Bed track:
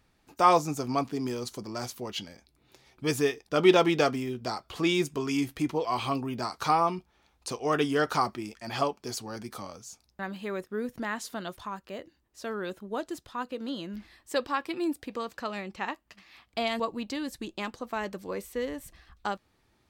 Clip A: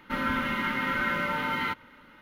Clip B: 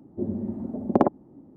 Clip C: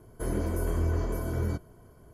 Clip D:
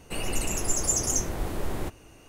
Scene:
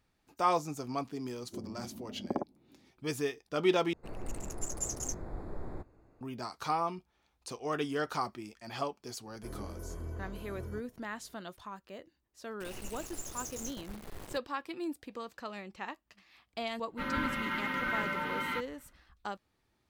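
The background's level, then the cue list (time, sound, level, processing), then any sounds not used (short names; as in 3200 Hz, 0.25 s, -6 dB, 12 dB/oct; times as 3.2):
bed track -7.5 dB
1.35 add B -14.5 dB
3.93 replace with D -10 dB + Wiener smoothing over 15 samples
9.23 add C -13.5 dB
12.49 add D -16 dB + sample gate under -27.5 dBFS
16.87 add A -5.5 dB + three-band expander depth 70%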